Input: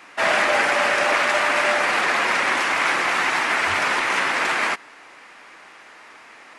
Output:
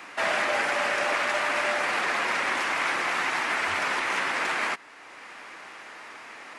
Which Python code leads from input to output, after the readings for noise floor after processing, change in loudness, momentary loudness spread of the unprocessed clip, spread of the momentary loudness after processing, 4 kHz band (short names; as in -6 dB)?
-47 dBFS, -6.5 dB, 2 LU, 18 LU, -6.5 dB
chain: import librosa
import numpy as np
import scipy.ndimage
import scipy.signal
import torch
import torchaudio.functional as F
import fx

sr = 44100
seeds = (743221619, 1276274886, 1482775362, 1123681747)

y = fx.band_squash(x, sr, depth_pct=40)
y = F.gain(torch.from_numpy(y), -6.5).numpy()